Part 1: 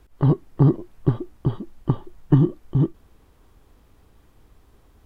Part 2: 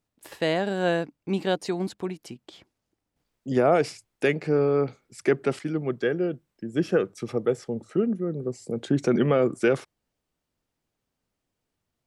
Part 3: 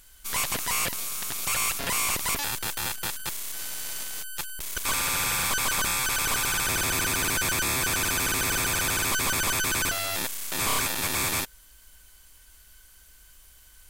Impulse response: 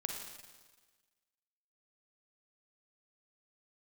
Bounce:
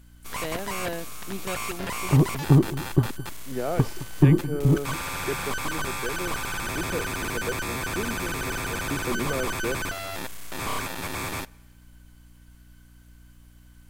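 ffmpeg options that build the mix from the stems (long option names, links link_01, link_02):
-filter_complex "[0:a]adelay=1900,volume=-1dB,asplit=3[link_01][link_02][link_03];[link_01]atrim=end=3.11,asetpts=PTS-STARTPTS,afade=type=out:start_time=3.106:duration=0.004:curve=hsin[link_04];[link_02]atrim=start=3.11:end=3.69,asetpts=PTS-STARTPTS,volume=0[link_05];[link_03]atrim=start=3.69,asetpts=PTS-STARTPTS,afade=type=in:duration=0.004:curve=hsin[link_06];[link_04][link_05][link_06]concat=n=3:v=0:a=1,asplit=2[link_07][link_08];[link_08]volume=-16.5dB[link_09];[1:a]volume=-9dB[link_10];[2:a]highshelf=frequency=2800:gain=-11.5,aeval=exprs='val(0)+0.00282*(sin(2*PI*60*n/s)+sin(2*PI*2*60*n/s)/2+sin(2*PI*3*60*n/s)/3+sin(2*PI*4*60*n/s)/4+sin(2*PI*5*60*n/s)/5)':channel_layout=same,volume=-0.5dB,asplit=2[link_11][link_12];[link_12]volume=-21dB[link_13];[3:a]atrim=start_sample=2205[link_14];[link_13][link_14]afir=irnorm=-1:irlink=0[link_15];[link_09]aecho=0:1:215:1[link_16];[link_07][link_10][link_11][link_15][link_16]amix=inputs=5:normalize=0"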